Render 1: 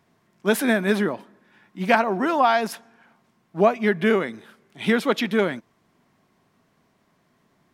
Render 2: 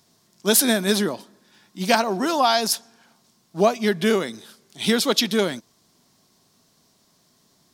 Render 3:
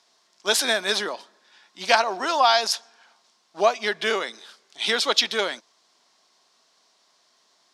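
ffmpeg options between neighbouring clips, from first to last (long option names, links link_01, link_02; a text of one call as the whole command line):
ffmpeg -i in.wav -af "highshelf=frequency=3200:width_type=q:width=1.5:gain=13" out.wav
ffmpeg -i in.wav -af "highpass=660,lowpass=5600,volume=2.5dB" out.wav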